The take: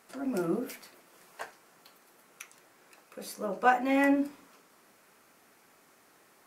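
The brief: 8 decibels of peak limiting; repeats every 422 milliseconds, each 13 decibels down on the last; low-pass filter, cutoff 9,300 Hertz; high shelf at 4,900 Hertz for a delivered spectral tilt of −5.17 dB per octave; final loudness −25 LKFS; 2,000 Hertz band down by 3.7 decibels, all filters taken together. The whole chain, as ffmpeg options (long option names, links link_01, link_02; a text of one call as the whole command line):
ffmpeg -i in.wav -af "lowpass=9300,equalizer=frequency=2000:width_type=o:gain=-5.5,highshelf=frequency=4900:gain=3.5,alimiter=limit=-20dB:level=0:latency=1,aecho=1:1:422|844|1266:0.224|0.0493|0.0108,volume=8dB" out.wav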